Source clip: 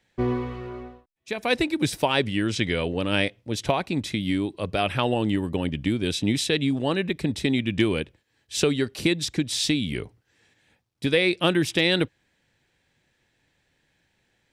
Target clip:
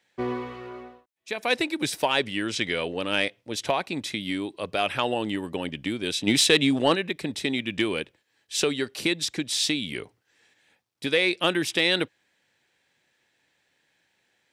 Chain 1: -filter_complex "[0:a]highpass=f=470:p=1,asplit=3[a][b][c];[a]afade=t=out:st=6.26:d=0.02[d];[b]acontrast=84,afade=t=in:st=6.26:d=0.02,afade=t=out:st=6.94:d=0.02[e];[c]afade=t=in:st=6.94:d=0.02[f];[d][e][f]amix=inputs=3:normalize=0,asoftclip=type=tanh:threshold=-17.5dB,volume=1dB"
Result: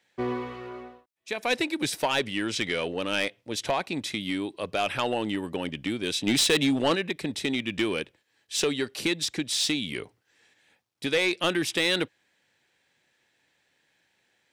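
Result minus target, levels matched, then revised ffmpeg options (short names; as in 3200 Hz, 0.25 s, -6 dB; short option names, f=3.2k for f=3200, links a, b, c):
soft clip: distortion +13 dB
-filter_complex "[0:a]highpass=f=470:p=1,asplit=3[a][b][c];[a]afade=t=out:st=6.26:d=0.02[d];[b]acontrast=84,afade=t=in:st=6.26:d=0.02,afade=t=out:st=6.94:d=0.02[e];[c]afade=t=in:st=6.94:d=0.02[f];[d][e][f]amix=inputs=3:normalize=0,asoftclip=type=tanh:threshold=-8dB,volume=1dB"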